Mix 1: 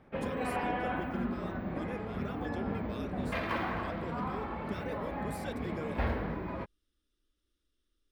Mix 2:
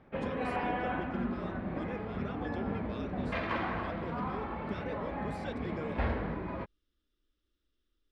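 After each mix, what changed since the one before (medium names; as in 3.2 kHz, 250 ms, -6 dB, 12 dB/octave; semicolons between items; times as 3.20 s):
master: add low-pass 4.8 kHz 12 dB/octave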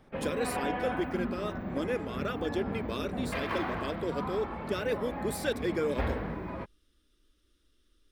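speech +11.0 dB; master: remove low-pass 4.8 kHz 12 dB/octave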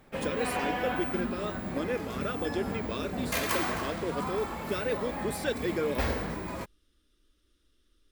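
background: remove distance through air 410 m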